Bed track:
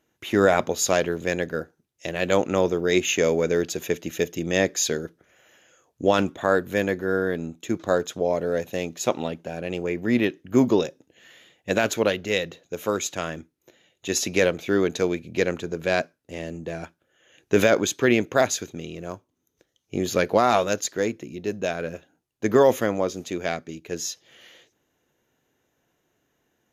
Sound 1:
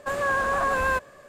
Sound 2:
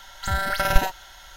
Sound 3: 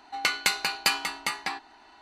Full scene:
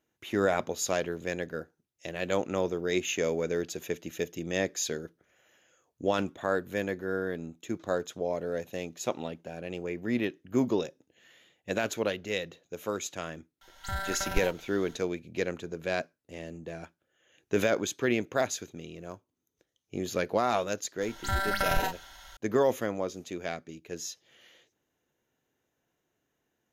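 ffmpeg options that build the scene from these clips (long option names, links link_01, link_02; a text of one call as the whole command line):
ffmpeg -i bed.wav -i cue0.wav -i cue1.wav -filter_complex "[2:a]asplit=2[link_01][link_02];[0:a]volume=-8dB[link_03];[link_01]dynaudnorm=framelen=130:gausssize=3:maxgain=4dB[link_04];[link_02]alimiter=limit=-11dB:level=0:latency=1:release=13[link_05];[link_04]atrim=end=1.36,asetpts=PTS-STARTPTS,volume=-13dB,afade=type=in:duration=0.004:curve=hsin,afade=type=out:start_time=1.356:duration=0.004:curve=hsin,adelay=13610[link_06];[link_05]atrim=end=1.36,asetpts=PTS-STARTPTS,volume=-4.5dB,afade=type=in:duration=0.004:curve=hsin,afade=type=out:start_time=1.356:duration=0.004:curve=hsin,adelay=21010[link_07];[link_03][link_06][link_07]amix=inputs=3:normalize=0" out.wav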